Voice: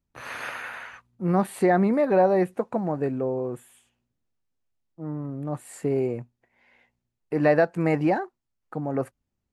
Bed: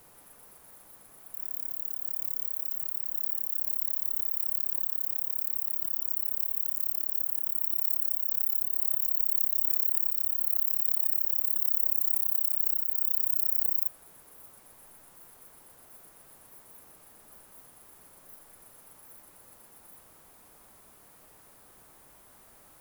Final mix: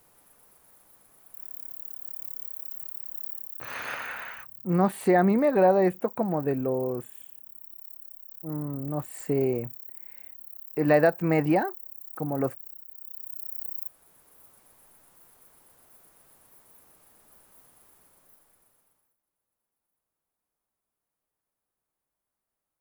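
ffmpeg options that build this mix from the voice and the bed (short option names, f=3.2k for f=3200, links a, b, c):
-filter_complex "[0:a]adelay=3450,volume=-0.5dB[a];[1:a]volume=7.5dB,afade=t=out:st=3.27:d=0.54:silence=0.266073,afade=t=in:st=12.98:d=1.43:silence=0.237137,afade=t=out:st=17.82:d=1.34:silence=0.0446684[b];[a][b]amix=inputs=2:normalize=0"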